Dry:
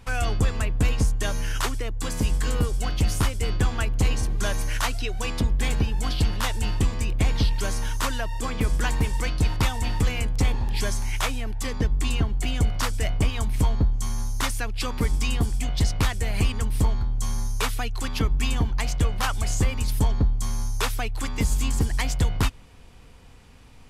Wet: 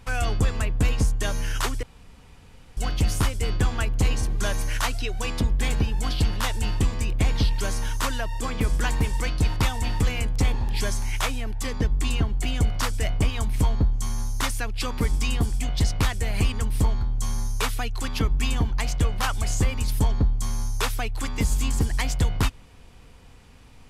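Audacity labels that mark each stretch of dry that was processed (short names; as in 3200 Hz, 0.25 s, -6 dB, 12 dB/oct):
1.830000	2.770000	room tone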